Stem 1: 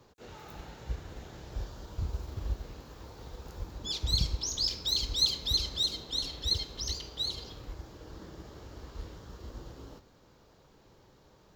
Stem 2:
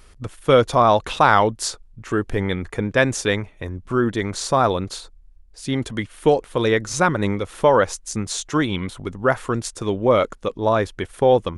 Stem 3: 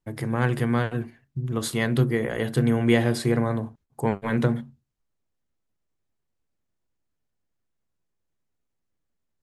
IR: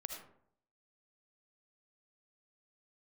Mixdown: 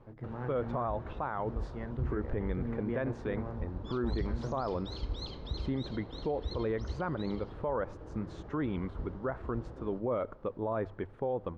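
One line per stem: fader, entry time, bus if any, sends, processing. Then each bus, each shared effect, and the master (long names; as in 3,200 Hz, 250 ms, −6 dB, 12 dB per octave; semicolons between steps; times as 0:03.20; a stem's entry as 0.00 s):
+1.5 dB, 0.00 s, no send, level that may rise only so fast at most 510 dB per second
−14.5 dB, 0.00 s, send −20.5 dB, mains-hum notches 50/100 Hz; automatic gain control
−16.0 dB, 0.00 s, no send, no processing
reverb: on, RT60 0.65 s, pre-delay 35 ms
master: low-pass filter 1,300 Hz 12 dB per octave; brickwall limiter −24.5 dBFS, peak gain reduction 9 dB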